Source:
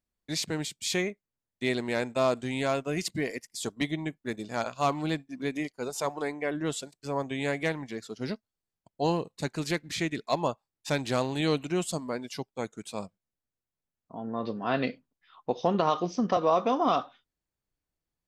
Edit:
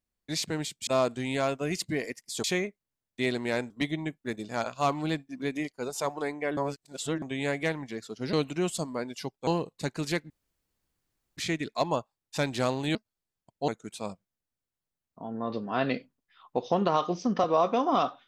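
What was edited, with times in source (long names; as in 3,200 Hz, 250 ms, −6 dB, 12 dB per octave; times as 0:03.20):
0:00.87–0:02.13: move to 0:03.70
0:06.57–0:07.22: reverse
0:08.33–0:09.06: swap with 0:11.47–0:12.61
0:09.89: splice in room tone 1.07 s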